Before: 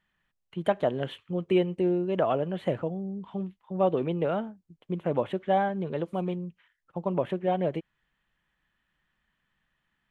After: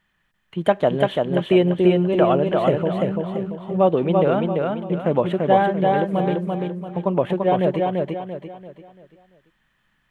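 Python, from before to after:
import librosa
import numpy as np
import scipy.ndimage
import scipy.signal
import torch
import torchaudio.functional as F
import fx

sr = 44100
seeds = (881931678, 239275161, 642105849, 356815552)

y = fx.echo_feedback(x, sr, ms=340, feedback_pct=38, wet_db=-3)
y = F.gain(torch.from_numpy(y), 7.5).numpy()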